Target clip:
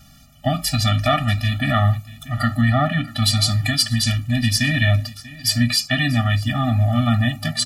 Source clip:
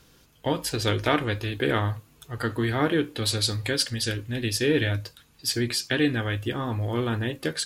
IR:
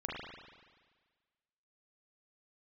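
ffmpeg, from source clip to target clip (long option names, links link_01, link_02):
-filter_complex "[0:a]asettb=1/sr,asplit=3[link_01][link_02][link_03];[link_01]atrim=end=2.614[link_04];[link_02]atrim=start=2.61:end=3.08,asetpts=PTS-STARTPTS,afade=type=in:duration=0.004:curve=qsin,afade=type=out:start_time=0.466:duration=0.004:curve=qsin,aemphasis=mode=reproduction:type=cd[link_05];[link_03]atrim=start=3.076[link_06];[link_04][link_05]acrossfade=duration=0.004:curve1=hsin:curve2=qsin[link_07];[link_07][link_06]acrossfade=duration=0.004:curve1=qsin:curve2=hsin,asplit=2[link_08][link_09];[link_09]alimiter=limit=-14.5dB:level=0:latency=1:release=146,volume=1dB[link_10];[link_08][link_10]amix=inputs=2:normalize=0,aecho=1:1:639:0.112,afftfilt=real='re*eq(mod(floor(b*sr/1024/280),2),0)':imag='im*eq(mod(floor(b*sr/1024/280),2),0)':win_size=1024:overlap=0.75,volume=4.5dB"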